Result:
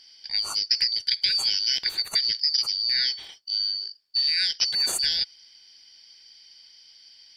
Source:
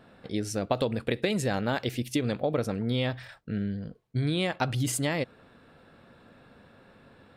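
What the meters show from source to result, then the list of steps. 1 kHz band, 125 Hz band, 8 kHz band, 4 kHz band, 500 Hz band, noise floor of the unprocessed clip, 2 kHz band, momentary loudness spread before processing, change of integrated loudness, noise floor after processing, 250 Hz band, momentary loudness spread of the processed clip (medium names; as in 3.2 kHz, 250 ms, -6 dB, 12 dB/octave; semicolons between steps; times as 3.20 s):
under -10 dB, under -25 dB, +5.0 dB, +17.5 dB, under -20 dB, -57 dBFS, +1.0 dB, 7 LU, +7.0 dB, -54 dBFS, under -25 dB, 6 LU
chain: four frequency bands reordered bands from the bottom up 4321; trim +3.5 dB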